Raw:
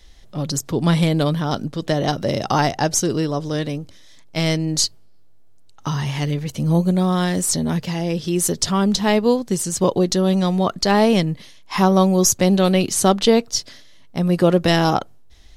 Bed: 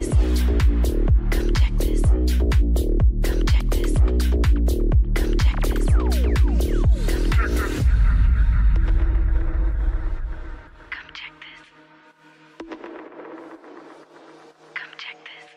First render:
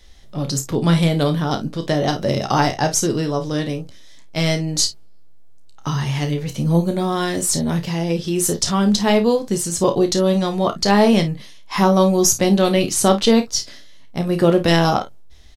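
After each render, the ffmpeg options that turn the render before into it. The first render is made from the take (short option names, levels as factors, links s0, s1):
-filter_complex "[0:a]asplit=2[s0][s1];[s1]adelay=14,volume=0.282[s2];[s0][s2]amix=inputs=2:normalize=0,asplit=2[s3][s4];[s4]aecho=0:1:30|53:0.355|0.2[s5];[s3][s5]amix=inputs=2:normalize=0"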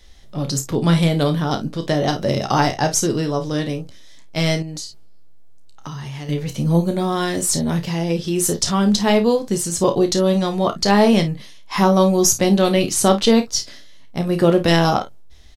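-filter_complex "[0:a]asettb=1/sr,asplit=3[s0][s1][s2];[s0]atrim=end=4.624[s3];[s1]atrim=start=4.62:end=6.29,asetpts=PTS-STARTPTS,afade=t=in:d=0.004:c=qsin,afade=t=out:st=1.666:d=0.004:c=qsin,acompressor=threshold=0.0398:ratio=6:attack=3.2:release=140:knee=1:detection=peak[s4];[s2]atrim=start=6.286[s5];[s3][s4]acrossfade=d=0.004:c1=hsin:c2=qsin[s6];[s6][s5]acrossfade=d=0.004:c1=qsin:c2=hsin"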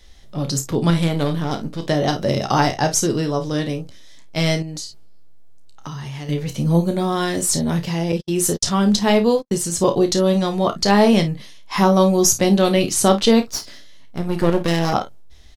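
-filter_complex "[0:a]asettb=1/sr,asplit=3[s0][s1][s2];[s0]atrim=end=0.904[s3];[s1]atrim=start=0.9:end=1.87,asetpts=PTS-STARTPTS,afade=t=in:d=0.004:c=qsin,afade=t=out:st=0.966:d=0.004:c=qsin,aeval=exprs='if(lt(val(0),0),0.447*val(0),val(0))':c=same[s4];[s2]atrim=start=1.866[s5];[s3][s4]acrossfade=d=0.004:c1=hsin:c2=qsin[s6];[s6][s5]acrossfade=d=0.004:c1=qsin:c2=hsin,asettb=1/sr,asplit=3[s7][s8][s9];[s7]atrim=end=8.124[s10];[s8]atrim=start=8.12:end=9.61,asetpts=PTS-STARTPTS,afade=t=in:d=0.004:c=qsin,afade=t=out:st=1.486:d=0.004:c=qsin,agate=range=0.00178:threshold=0.0631:ratio=16:release=100:detection=peak[s11];[s9]atrim=start=9.606[s12];[s10][s11]acrossfade=d=0.004:c1=hsin:c2=qsin[s13];[s13][s12]acrossfade=d=0.004:c1=qsin:c2=hsin,asettb=1/sr,asplit=3[s14][s15][s16];[s14]atrim=end=13.424[s17];[s15]atrim=start=13.42:end=14.93,asetpts=PTS-STARTPTS,afade=t=in:d=0.004:c=qsin,afade=t=out:st=1.506:d=0.004:c=qsin,aeval=exprs='if(lt(val(0),0),0.251*val(0),val(0))':c=same[s18];[s16]atrim=start=14.926[s19];[s17][s18]acrossfade=d=0.004:c1=hsin:c2=qsin[s20];[s20][s19]acrossfade=d=0.004:c1=qsin:c2=hsin"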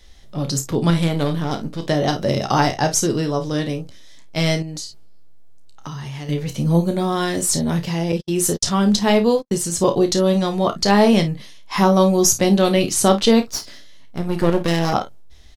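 -af anull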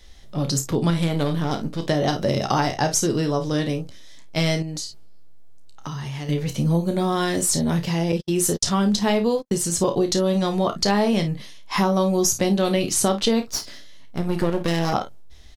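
-af "acompressor=threshold=0.141:ratio=4"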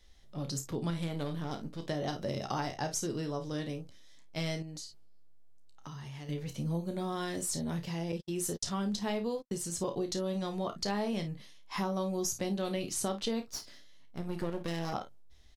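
-af "volume=0.211"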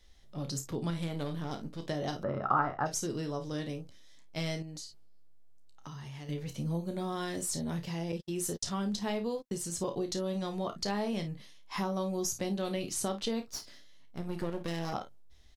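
-filter_complex "[0:a]asplit=3[s0][s1][s2];[s0]afade=t=out:st=2.22:d=0.02[s3];[s1]lowpass=f=1300:t=q:w=7,afade=t=in:st=2.22:d=0.02,afade=t=out:st=2.85:d=0.02[s4];[s2]afade=t=in:st=2.85:d=0.02[s5];[s3][s4][s5]amix=inputs=3:normalize=0"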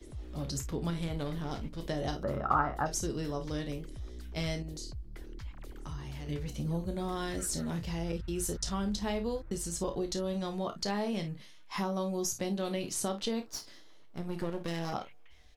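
-filter_complex "[1:a]volume=0.0531[s0];[0:a][s0]amix=inputs=2:normalize=0"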